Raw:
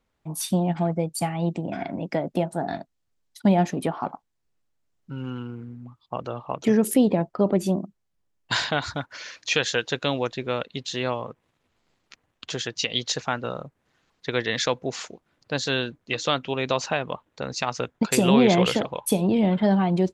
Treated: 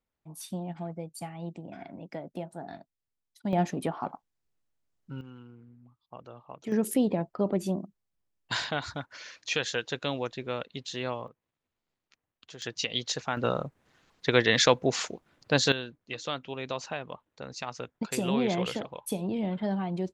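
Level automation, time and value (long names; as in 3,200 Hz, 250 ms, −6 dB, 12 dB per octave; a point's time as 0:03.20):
−13 dB
from 0:03.53 −5 dB
from 0:05.21 −15 dB
from 0:06.72 −6.5 dB
from 0:11.28 −16 dB
from 0:12.62 −5 dB
from 0:13.37 +3 dB
from 0:15.72 −10 dB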